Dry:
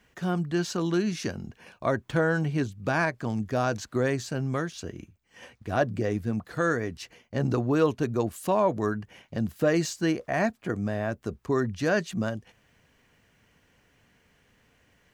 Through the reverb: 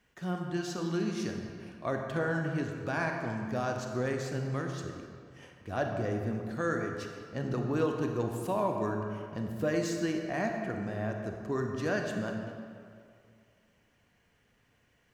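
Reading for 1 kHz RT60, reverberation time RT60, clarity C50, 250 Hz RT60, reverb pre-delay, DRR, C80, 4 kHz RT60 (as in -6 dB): 2.3 s, 2.3 s, 3.5 dB, 2.2 s, 28 ms, 2.5 dB, 4.5 dB, 1.4 s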